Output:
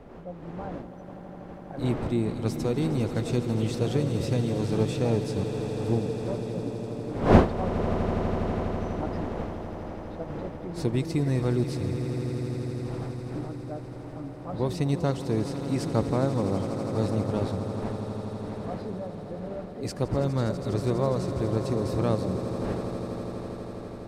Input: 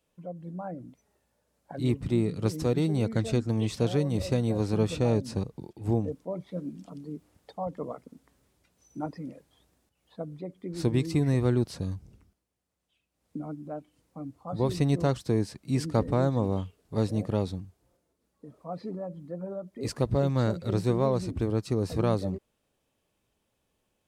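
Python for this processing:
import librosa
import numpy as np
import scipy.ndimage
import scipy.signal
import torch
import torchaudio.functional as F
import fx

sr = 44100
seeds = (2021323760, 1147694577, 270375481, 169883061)

y = fx.dmg_wind(x, sr, seeds[0], corner_hz=500.0, level_db=-35.0)
y = fx.echo_swell(y, sr, ms=82, loudest=8, wet_db=-14.5)
y = F.gain(torch.from_numpy(y), -1.0).numpy()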